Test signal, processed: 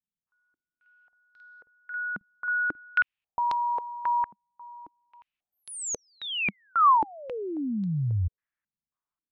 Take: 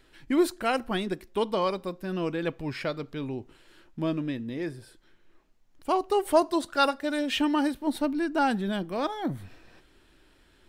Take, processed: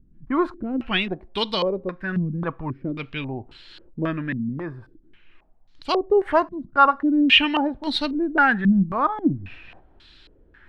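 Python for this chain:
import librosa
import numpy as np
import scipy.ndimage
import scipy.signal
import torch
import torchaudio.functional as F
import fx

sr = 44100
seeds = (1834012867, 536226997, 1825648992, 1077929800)

y = fx.peak_eq(x, sr, hz=460.0, db=-9.5, octaves=2.5)
y = fx.filter_held_lowpass(y, sr, hz=3.7, low_hz=200.0, high_hz=4100.0)
y = F.gain(torch.from_numpy(y), 8.0).numpy()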